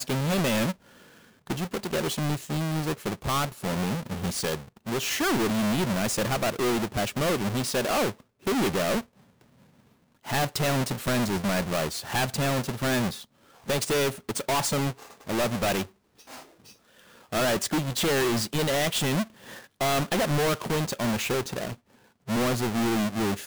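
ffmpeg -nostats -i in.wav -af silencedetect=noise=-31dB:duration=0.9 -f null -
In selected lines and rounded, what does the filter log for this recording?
silence_start: 9.00
silence_end: 10.29 | silence_duration: 1.29
silence_start: 15.83
silence_end: 17.32 | silence_duration: 1.50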